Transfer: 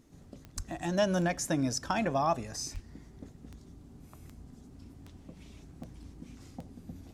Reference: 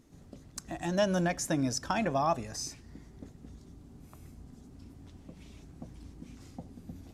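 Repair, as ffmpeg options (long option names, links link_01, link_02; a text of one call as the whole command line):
ffmpeg -i in.wav -filter_complex "[0:a]adeclick=threshold=4,asplit=3[link_01][link_02][link_03];[link_01]afade=type=out:start_time=0.56:duration=0.02[link_04];[link_02]highpass=frequency=140:width=0.5412,highpass=frequency=140:width=1.3066,afade=type=in:start_time=0.56:duration=0.02,afade=type=out:start_time=0.68:duration=0.02[link_05];[link_03]afade=type=in:start_time=0.68:duration=0.02[link_06];[link_04][link_05][link_06]amix=inputs=3:normalize=0,asplit=3[link_07][link_08][link_09];[link_07]afade=type=out:start_time=2.73:duration=0.02[link_10];[link_08]highpass=frequency=140:width=0.5412,highpass=frequency=140:width=1.3066,afade=type=in:start_time=2.73:duration=0.02,afade=type=out:start_time=2.85:duration=0.02[link_11];[link_09]afade=type=in:start_time=2.85:duration=0.02[link_12];[link_10][link_11][link_12]amix=inputs=3:normalize=0" out.wav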